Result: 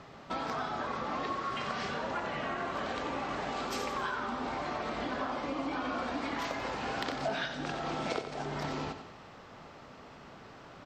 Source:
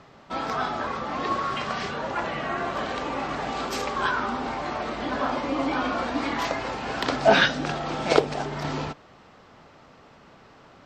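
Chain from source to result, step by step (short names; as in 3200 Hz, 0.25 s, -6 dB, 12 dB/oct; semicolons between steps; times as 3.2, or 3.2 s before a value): compressor 6:1, threshold -33 dBFS, peak gain reduction 20 dB; on a send: feedback echo 91 ms, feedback 50%, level -9 dB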